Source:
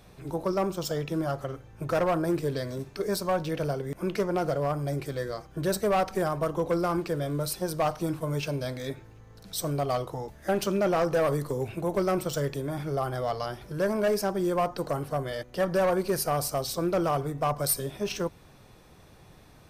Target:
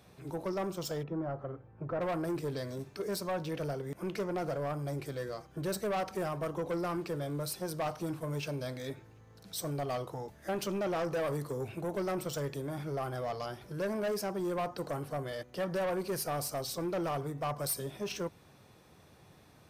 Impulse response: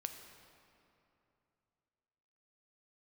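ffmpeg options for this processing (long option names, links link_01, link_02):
-filter_complex "[0:a]highpass=80,asoftclip=type=tanh:threshold=-24dB,asplit=3[link_01][link_02][link_03];[link_01]afade=type=out:start_time=1.02:duration=0.02[link_04];[link_02]lowpass=1300,afade=type=in:start_time=1.02:duration=0.02,afade=type=out:start_time=2:duration=0.02[link_05];[link_03]afade=type=in:start_time=2:duration=0.02[link_06];[link_04][link_05][link_06]amix=inputs=3:normalize=0,volume=-4.5dB"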